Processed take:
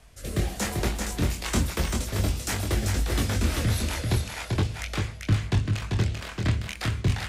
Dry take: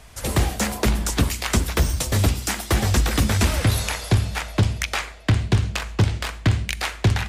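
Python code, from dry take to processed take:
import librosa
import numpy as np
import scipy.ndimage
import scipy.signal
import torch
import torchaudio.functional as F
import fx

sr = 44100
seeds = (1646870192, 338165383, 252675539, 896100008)

p1 = fx.rotary_switch(x, sr, hz=1.1, then_hz=6.3, switch_at_s=2.99)
p2 = fx.chorus_voices(p1, sr, voices=2, hz=0.39, base_ms=23, depth_ms=3.1, mix_pct=40)
p3 = p2 + fx.echo_single(p2, sr, ms=390, db=-4.0, dry=0)
y = F.gain(torch.from_numpy(p3), -2.0).numpy()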